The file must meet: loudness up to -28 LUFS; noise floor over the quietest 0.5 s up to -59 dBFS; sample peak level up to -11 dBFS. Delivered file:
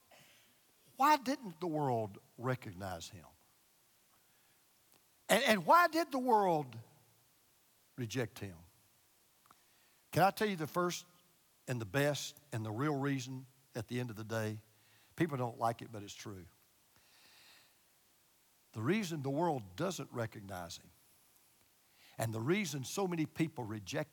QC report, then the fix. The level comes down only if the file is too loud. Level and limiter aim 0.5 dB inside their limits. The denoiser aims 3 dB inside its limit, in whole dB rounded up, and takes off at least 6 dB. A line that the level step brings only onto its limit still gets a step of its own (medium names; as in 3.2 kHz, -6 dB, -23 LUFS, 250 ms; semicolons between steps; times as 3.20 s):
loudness -36.0 LUFS: pass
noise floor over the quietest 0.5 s -71 dBFS: pass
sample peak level -14.0 dBFS: pass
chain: none needed